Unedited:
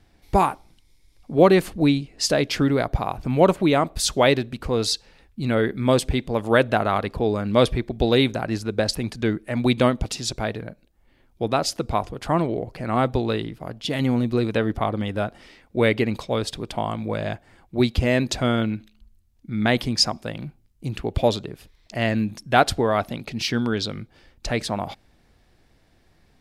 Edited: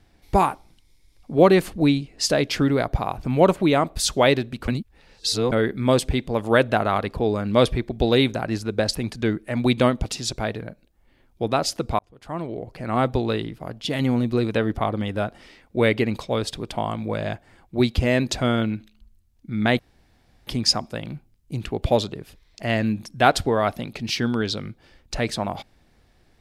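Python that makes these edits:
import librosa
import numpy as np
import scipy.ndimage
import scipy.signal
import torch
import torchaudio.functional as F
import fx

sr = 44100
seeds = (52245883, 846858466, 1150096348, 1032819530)

y = fx.edit(x, sr, fx.reverse_span(start_s=4.68, length_s=0.84),
    fx.fade_in_span(start_s=11.99, length_s=1.04),
    fx.insert_room_tone(at_s=19.79, length_s=0.68), tone=tone)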